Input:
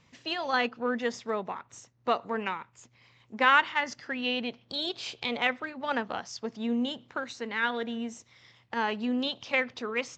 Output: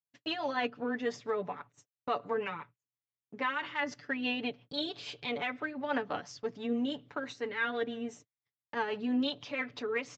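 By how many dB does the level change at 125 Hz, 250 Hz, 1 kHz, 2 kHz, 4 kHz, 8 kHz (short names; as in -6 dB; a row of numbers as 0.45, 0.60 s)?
-2.5, -2.5, -7.0, -6.5, -6.0, -7.5 dB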